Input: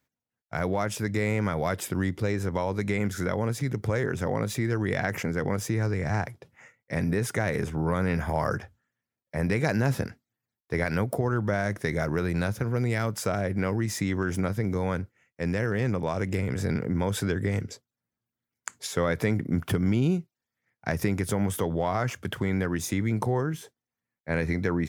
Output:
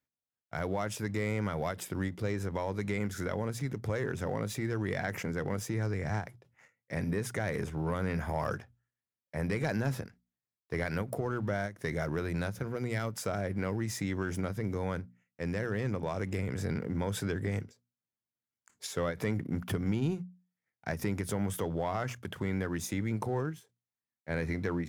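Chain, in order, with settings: sample leveller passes 1; notches 60/120/180/240 Hz; ending taper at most 210 dB/s; gain -9 dB

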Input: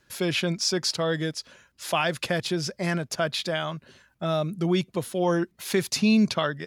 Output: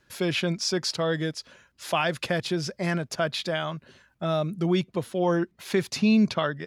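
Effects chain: high shelf 5600 Hz -5.5 dB, from 4.8 s -11 dB

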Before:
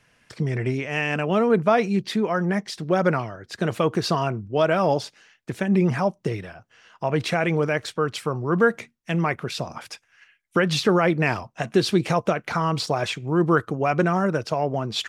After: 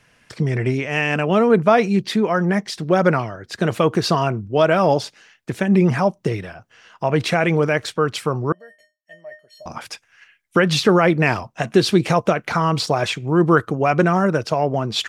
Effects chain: 8.52–9.66 resonator 610 Hz, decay 0.25 s, harmonics odd, mix 100%; gain +4.5 dB

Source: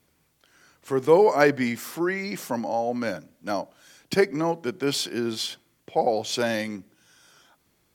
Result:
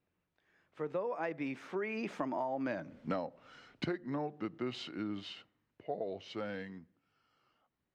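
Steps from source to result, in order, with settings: Doppler pass-by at 2.91, 42 m/s, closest 11 m; LPF 2600 Hz 12 dB/oct; compressor 16:1, threshold -40 dBFS, peak gain reduction 15.5 dB; gain +7.5 dB

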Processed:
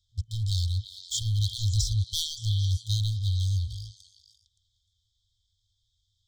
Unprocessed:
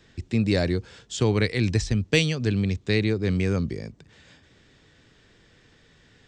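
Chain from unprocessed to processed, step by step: sample leveller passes 3; FFT band-reject 110–3100 Hz; delay with a stepping band-pass 0.114 s, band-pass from 1100 Hz, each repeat 0.7 oct, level -2 dB; gain -7.5 dB

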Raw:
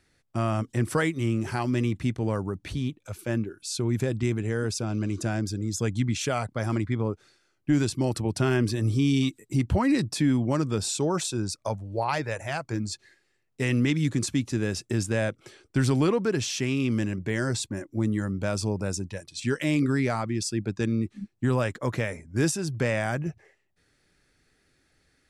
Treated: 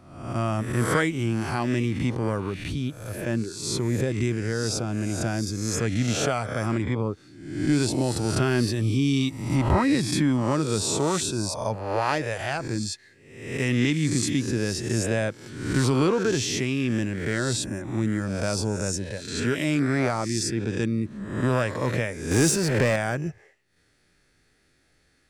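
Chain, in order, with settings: spectral swells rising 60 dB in 0.79 s; 22.31–22.96 power-law curve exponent 0.7

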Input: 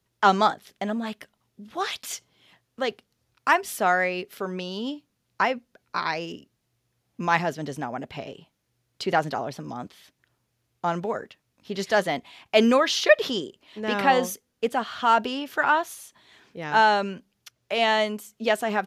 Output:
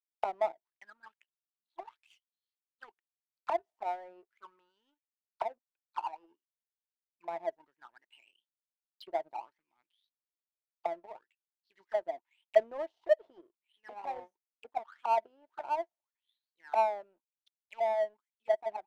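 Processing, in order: small resonant body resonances 340/900 Hz, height 16 dB, ringing for 75 ms; auto-wah 660–4900 Hz, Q 14, down, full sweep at -18.5 dBFS; power-law curve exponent 1.4; gain +1.5 dB

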